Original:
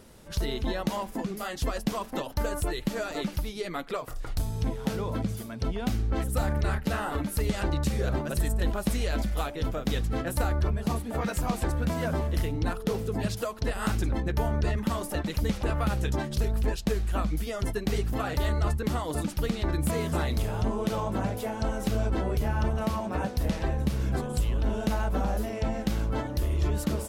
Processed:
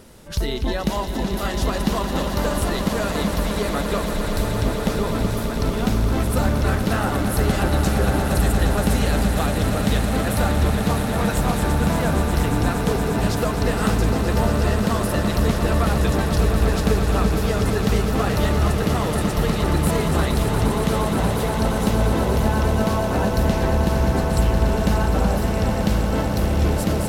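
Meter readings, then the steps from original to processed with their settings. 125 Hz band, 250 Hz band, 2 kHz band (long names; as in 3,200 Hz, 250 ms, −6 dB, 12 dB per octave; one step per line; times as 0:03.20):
+8.5 dB, +9.5 dB, +9.5 dB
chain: echo that builds up and dies away 117 ms, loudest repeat 8, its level −10.5 dB
level +6 dB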